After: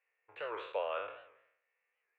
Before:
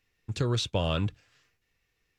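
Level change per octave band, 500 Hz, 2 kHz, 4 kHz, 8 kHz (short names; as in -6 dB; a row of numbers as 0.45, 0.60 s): -5.0 dB, -4.0 dB, -18.5 dB, under -35 dB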